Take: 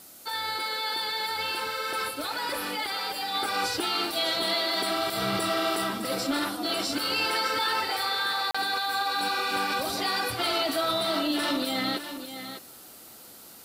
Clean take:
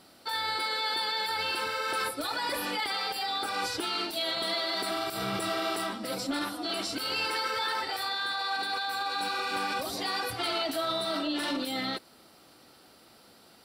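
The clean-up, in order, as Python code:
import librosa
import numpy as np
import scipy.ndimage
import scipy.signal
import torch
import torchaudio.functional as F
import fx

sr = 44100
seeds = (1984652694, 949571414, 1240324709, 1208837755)

y = fx.fix_interpolate(x, sr, at_s=(8.51,), length_ms=35.0)
y = fx.noise_reduce(y, sr, print_start_s=13.13, print_end_s=13.63, reduce_db=16.0)
y = fx.fix_echo_inverse(y, sr, delay_ms=606, level_db=-10.0)
y = fx.gain(y, sr, db=fx.steps((0.0, 0.0), (3.34, -3.5)))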